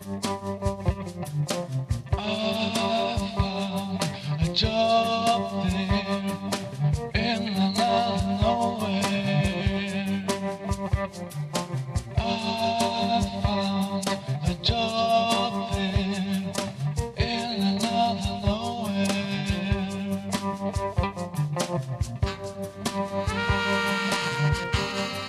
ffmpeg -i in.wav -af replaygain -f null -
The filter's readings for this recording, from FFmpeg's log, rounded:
track_gain = +7.1 dB
track_peak = 0.202